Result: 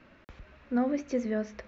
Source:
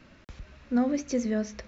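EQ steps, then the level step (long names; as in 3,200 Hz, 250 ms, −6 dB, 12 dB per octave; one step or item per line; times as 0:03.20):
bass and treble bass −6 dB, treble −14 dB
0.0 dB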